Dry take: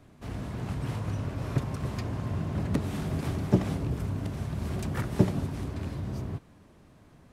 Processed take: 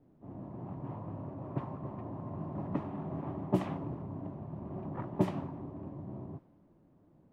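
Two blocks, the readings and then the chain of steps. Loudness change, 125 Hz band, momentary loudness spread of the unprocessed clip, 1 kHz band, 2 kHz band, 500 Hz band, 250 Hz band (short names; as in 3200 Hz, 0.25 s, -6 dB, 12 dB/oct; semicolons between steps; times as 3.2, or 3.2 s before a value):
-7.5 dB, -10.0 dB, 9 LU, -2.5 dB, -13.0 dB, -4.5 dB, -5.5 dB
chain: speaker cabinet 210–3200 Hz, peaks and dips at 230 Hz -6 dB, 450 Hz -10 dB, 990 Hz +4 dB, 1500 Hz -8 dB, 2200 Hz -4 dB; added noise white -54 dBFS; low-pass opened by the level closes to 330 Hz, open at -22.5 dBFS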